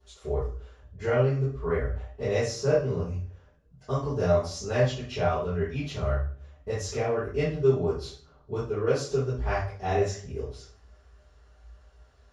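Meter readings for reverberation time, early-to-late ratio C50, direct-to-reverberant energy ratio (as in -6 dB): 0.45 s, 1.0 dB, -18.5 dB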